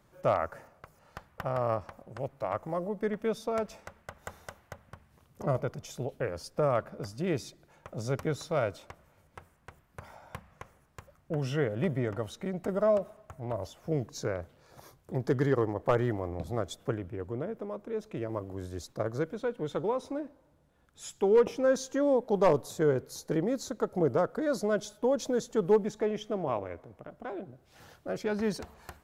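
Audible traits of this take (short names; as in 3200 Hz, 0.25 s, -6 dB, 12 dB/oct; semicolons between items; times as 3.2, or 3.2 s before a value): noise floor -66 dBFS; spectral tilt -6.5 dB/oct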